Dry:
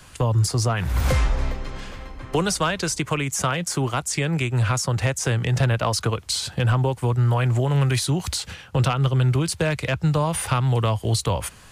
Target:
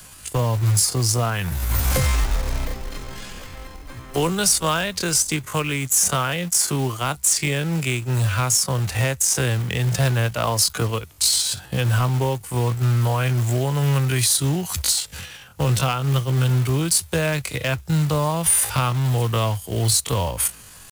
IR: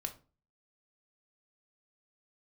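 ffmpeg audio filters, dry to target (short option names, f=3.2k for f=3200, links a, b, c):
-af "atempo=0.56,aemphasis=mode=production:type=50fm,acrusher=bits=4:mode=log:mix=0:aa=0.000001"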